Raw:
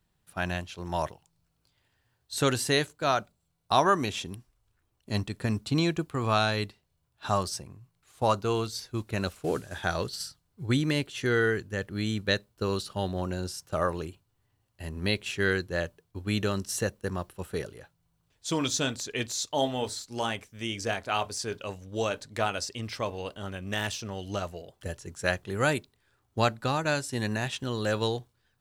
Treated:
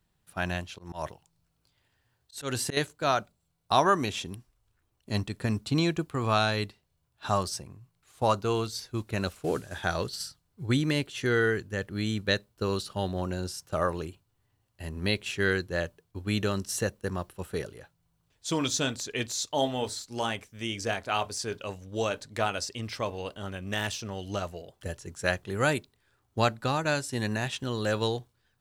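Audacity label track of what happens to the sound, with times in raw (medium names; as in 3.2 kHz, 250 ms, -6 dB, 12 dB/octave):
0.690000	2.770000	slow attack 161 ms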